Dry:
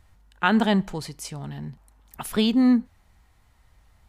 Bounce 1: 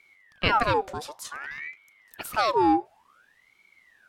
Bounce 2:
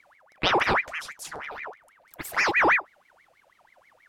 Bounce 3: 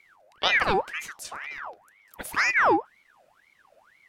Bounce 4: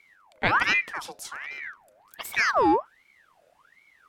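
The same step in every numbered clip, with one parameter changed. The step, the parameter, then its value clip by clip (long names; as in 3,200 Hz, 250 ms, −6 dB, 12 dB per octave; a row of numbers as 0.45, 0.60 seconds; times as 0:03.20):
ring modulator whose carrier an LFO sweeps, at: 0.55, 6.2, 2, 1.3 Hertz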